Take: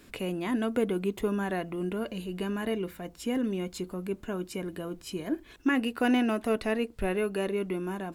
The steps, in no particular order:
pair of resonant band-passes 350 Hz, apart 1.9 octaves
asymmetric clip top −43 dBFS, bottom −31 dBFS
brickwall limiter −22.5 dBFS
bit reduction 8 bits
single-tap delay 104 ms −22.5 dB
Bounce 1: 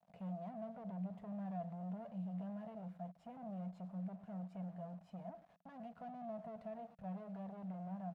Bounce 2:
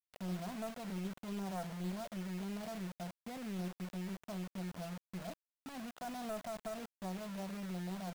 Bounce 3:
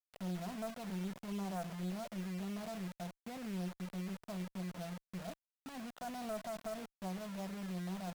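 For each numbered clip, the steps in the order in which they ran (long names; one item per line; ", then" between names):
single-tap delay, then bit reduction, then brickwall limiter, then asymmetric clip, then pair of resonant band-passes
brickwall limiter, then pair of resonant band-passes, then asymmetric clip, then single-tap delay, then bit reduction
single-tap delay, then brickwall limiter, then pair of resonant band-passes, then bit reduction, then asymmetric clip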